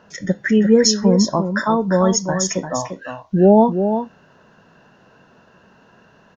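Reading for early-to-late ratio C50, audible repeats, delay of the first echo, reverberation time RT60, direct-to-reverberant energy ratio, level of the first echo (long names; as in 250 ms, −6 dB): no reverb audible, 1, 347 ms, no reverb audible, no reverb audible, −8.0 dB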